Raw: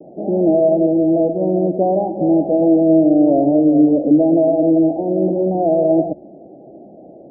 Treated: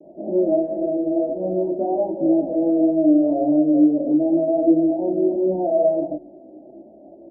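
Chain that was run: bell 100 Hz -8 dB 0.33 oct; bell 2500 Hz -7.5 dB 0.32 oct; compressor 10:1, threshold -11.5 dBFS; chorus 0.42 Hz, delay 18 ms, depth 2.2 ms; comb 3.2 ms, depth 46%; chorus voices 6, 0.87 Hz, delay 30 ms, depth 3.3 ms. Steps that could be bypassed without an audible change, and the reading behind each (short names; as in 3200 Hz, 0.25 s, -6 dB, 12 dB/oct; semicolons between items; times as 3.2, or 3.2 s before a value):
bell 2500 Hz: input band ends at 850 Hz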